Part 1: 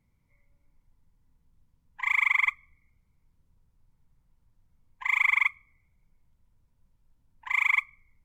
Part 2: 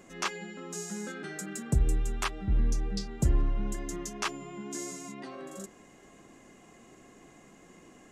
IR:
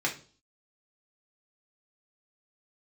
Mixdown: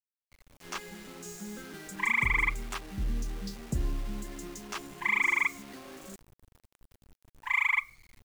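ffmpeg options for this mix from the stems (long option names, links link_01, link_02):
-filter_complex "[0:a]acrusher=bits=9:mix=0:aa=0.000001,adynamicequalizer=threshold=0.0178:dfrequency=2000:dqfactor=0.7:tfrequency=2000:tqfactor=0.7:attack=5:release=100:ratio=0.375:range=2.5:mode=cutabove:tftype=highshelf,volume=2.5dB[link_01];[1:a]adynamicequalizer=threshold=0.00282:dfrequency=230:dqfactor=2.5:tfrequency=230:tqfactor=2.5:attack=5:release=100:ratio=0.375:range=2:mode=boostabove:tftype=bell,acrusher=bits=6:mix=0:aa=0.000001,adelay=500,volume=-6dB[link_02];[link_01][link_02]amix=inputs=2:normalize=0,alimiter=limit=-17dB:level=0:latency=1:release=27"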